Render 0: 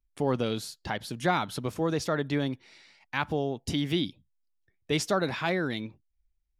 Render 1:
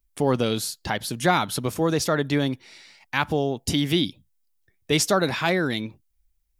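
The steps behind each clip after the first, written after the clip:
high-shelf EQ 6,900 Hz +10.5 dB
level +5.5 dB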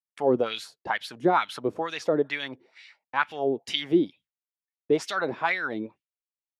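LFO wah 2.2 Hz 340–2,800 Hz, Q 2.3
downward expander −53 dBFS
level +4.5 dB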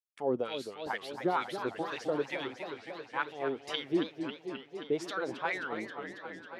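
feedback echo with a swinging delay time 269 ms, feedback 77%, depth 217 cents, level −9 dB
level −8.5 dB

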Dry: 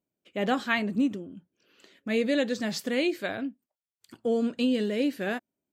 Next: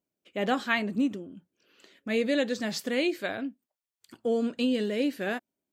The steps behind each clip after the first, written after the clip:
parametric band 110 Hz −3.5 dB 2 octaves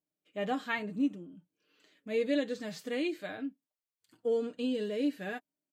comb filter 6.6 ms, depth 50%
harmonic and percussive parts rebalanced percussive −10 dB
level −5 dB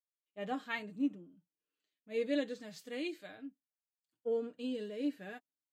multiband upward and downward expander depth 70%
level −6 dB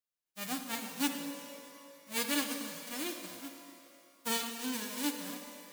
spectral envelope flattened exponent 0.1
reverb with rising layers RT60 2.4 s, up +12 semitones, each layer −8 dB, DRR 5.5 dB

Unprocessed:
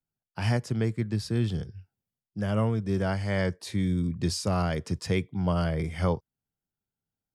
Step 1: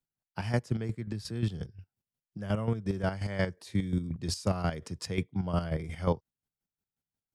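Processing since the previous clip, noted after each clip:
square-wave tremolo 5.6 Hz, depth 65%, duty 30%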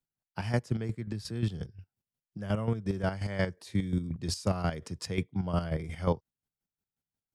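no processing that can be heard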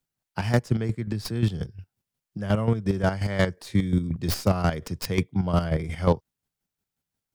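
stylus tracing distortion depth 0.13 ms
level +7 dB

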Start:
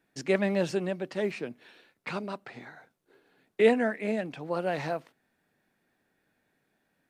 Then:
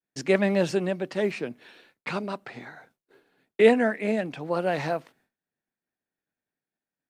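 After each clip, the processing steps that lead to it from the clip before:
downward expander −60 dBFS
level +4 dB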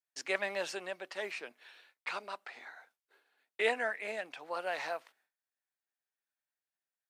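high-pass filter 820 Hz 12 dB per octave
level −4.5 dB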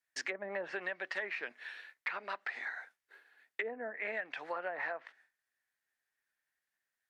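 treble cut that deepens with the level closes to 460 Hz, closed at −29.5 dBFS
parametric band 1,800 Hz +11.5 dB 0.6 octaves
downward compressor 6 to 1, threshold −37 dBFS, peak gain reduction 10.5 dB
level +2.5 dB

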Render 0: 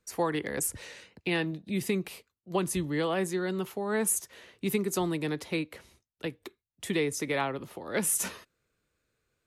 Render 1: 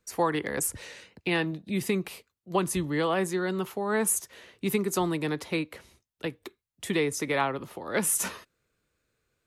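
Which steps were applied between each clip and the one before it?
dynamic equaliser 1,100 Hz, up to +4 dB, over −48 dBFS, Q 1.3
level +1.5 dB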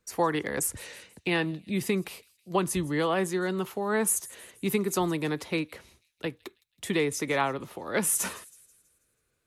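delay with a high-pass on its return 162 ms, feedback 49%, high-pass 4,000 Hz, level −19 dB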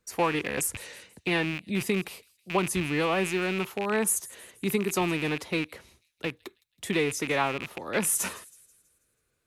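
loose part that buzzes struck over −41 dBFS, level −23 dBFS

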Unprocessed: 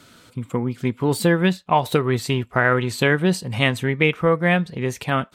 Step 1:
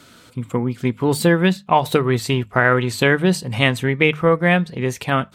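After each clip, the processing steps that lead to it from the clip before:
mains-hum notches 50/100/150/200 Hz
level +2.5 dB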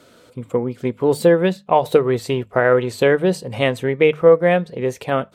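parametric band 510 Hz +12.5 dB 1.1 octaves
level −6 dB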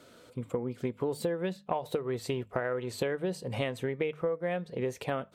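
downward compressor 10 to 1, threshold −22 dBFS, peak gain reduction 15.5 dB
level −6 dB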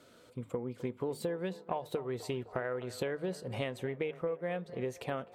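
feedback echo with a band-pass in the loop 256 ms, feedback 69%, band-pass 760 Hz, level −15 dB
level −4 dB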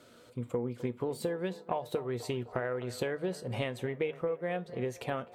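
tuned comb filter 120 Hz, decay 0.19 s, harmonics all, mix 50%
level +6 dB

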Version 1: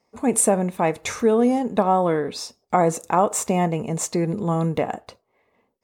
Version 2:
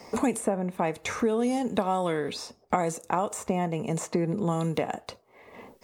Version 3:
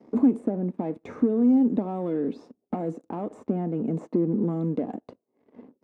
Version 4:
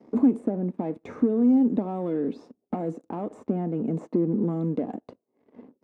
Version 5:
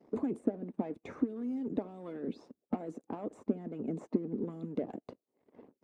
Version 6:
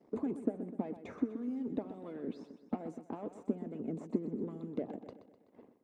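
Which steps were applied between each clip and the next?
multiband upward and downward compressor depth 100%; level −7.5 dB
leveller curve on the samples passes 3; resonant band-pass 270 Hz, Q 3
no processing that can be heard
harmonic and percussive parts rebalanced harmonic −15 dB; dynamic equaliser 930 Hz, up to −4 dB, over −47 dBFS, Q 1.3; level −2 dB
repeating echo 126 ms, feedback 52%, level −11.5 dB; level −2.5 dB

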